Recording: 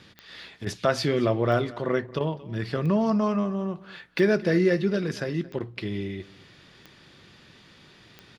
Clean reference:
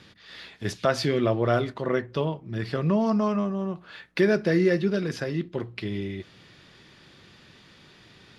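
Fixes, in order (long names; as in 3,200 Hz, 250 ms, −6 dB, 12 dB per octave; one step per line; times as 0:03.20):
click removal
repair the gap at 0:00.65/0:02.19/0:05.59, 13 ms
echo removal 226 ms −20.5 dB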